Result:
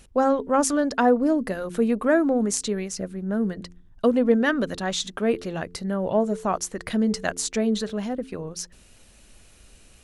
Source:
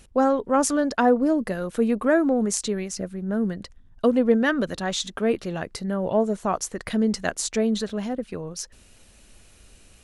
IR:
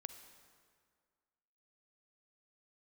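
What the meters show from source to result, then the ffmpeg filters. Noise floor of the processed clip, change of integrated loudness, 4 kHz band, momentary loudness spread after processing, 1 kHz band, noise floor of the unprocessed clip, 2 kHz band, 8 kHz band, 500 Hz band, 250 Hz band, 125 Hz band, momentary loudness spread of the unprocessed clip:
−53 dBFS, 0.0 dB, 0.0 dB, 11 LU, 0.0 dB, −53 dBFS, 0.0 dB, 0.0 dB, 0.0 dB, 0.0 dB, −0.5 dB, 11 LU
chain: -af "bandreject=frequency=87.91:width_type=h:width=4,bandreject=frequency=175.82:width_type=h:width=4,bandreject=frequency=263.73:width_type=h:width=4,bandreject=frequency=351.64:width_type=h:width=4,bandreject=frequency=439.55:width_type=h:width=4"

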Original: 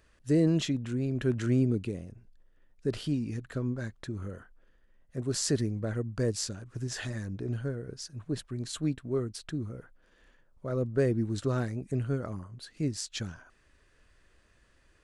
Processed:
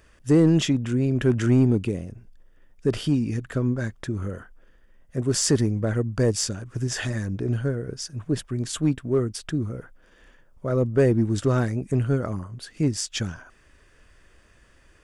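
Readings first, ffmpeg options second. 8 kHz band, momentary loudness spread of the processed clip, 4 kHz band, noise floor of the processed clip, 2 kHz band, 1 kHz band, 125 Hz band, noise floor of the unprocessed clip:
+8.0 dB, 13 LU, +7.0 dB, −57 dBFS, +8.0 dB, +8.5 dB, +8.0 dB, −65 dBFS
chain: -filter_complex "[0:a]asplit=2[link_01][link_02];[link_02]asoftclip=type=hard:threshold=-23.5dB,volume=-4dB[link_03];[link_01][link_03]amix=inputs=2:normalize=0,bandreject=frequency=4100:width=7.3,volume=4dB"

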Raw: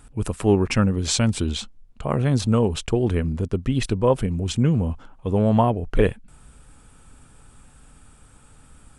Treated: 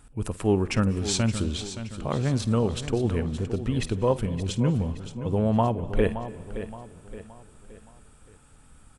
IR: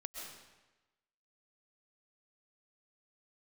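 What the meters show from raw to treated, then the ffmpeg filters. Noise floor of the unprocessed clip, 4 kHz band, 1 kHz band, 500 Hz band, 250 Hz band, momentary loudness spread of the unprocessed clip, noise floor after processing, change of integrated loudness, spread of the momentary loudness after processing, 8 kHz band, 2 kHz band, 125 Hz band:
−51 dBFS, −4.0 dB, −4.0 dB, −4.0 dB, −4.0 dB, 8 LU, −54 dBFS, −4.5 dB, 13 LU, −4.0 dB, −4.0 dB, −4.0 dB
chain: -filter_complex "[0:a]aecho=1:1:571|1142|1713|2284:0.266|0.112|0.0469|0.0197,asplit=2[link_01][link_02];[1:a]atrim=start_sample=2205,asetrate=40131,aresample=44100,adelay=52[link_03];[link_02][link_03]afir=irnorm=-1:irlink=0,volume=-14.5dB[link_04];[link_01][link_04]amix=inputs=2:normalize=0,volume=-4.5dB"

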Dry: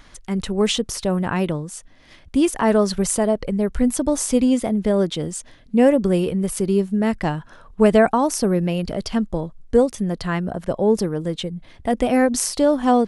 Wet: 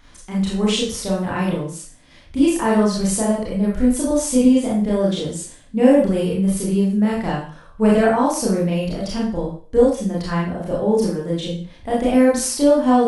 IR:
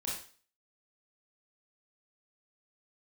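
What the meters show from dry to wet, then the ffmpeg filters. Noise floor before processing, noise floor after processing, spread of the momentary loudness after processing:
−48 dBFS, −46 dBFS, 11 LU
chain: -filter_complex "[1:a]atrim=start_sample=2205[link_01];[0:a][link_01]afir=irnorm=-1:irlink=0,volume=-1.5dB"

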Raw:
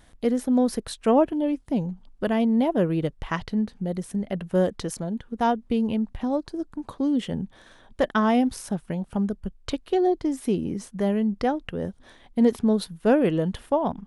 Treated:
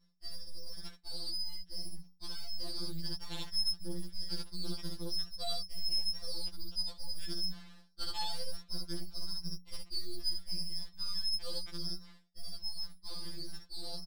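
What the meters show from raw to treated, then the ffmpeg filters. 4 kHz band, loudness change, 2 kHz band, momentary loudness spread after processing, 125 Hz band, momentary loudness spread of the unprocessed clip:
+5.5 dB, −14.0 dB, −20.5 dB, 12 LU, −17.0 dB, 11 LU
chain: -af "aecho=1:1:39|67:0.133|0.562,lowpass=frequency=2400:width_type=q:width=0.5098,lowpass=frequency=2400:width_type=q:width=0.6013,lowpass=frequency=2400:width_type=q:width=0.9,lowpass=frequency=2400:width_type=q:width=2.563,afreqshift=-2800,alimiter=limit=-15dB:level=0:latency=1,aeval=exprs='abs(val(0))':channel_layout=same,lowshelf=frequency=430:gain=-5.5,aeval=exprs='val(0)+0.00355*(sin(2*PI*60*n/s)+sin(2*PI*2*60*n/s)/2+sin(2*PI*3*60*n/s)/3+sin(2*PI*4*60*n/s)/4+sin(2*PI*5*60*n/s)/5)':channel_layout=same,areverse,acompressor=threshold=-38dB:ratio=5,areverse,agate=range=-33dB:threshold=-43dB:ratio=3:detection=peak,dynaudnorm=framelen=330:gausssize=17:maxgain=4dB,afftfilt=real='re*2.83*eq(mod(b,8),0)':imag='im*2.83*eq(mod(b,8),0)':win_size=2048:overlap=0.75"

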